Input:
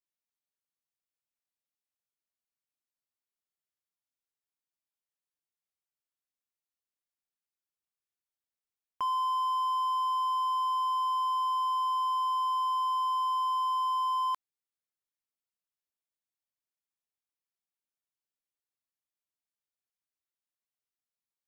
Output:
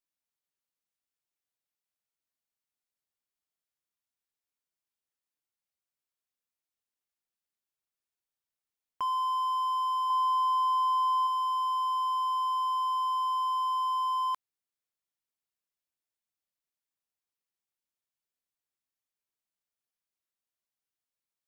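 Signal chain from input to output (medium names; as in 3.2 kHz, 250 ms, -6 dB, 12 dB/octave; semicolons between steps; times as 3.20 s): 10.10–11.27 s: small resonant body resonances 820/1700/3900 Hz, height 14 dB, ringing for 25 ms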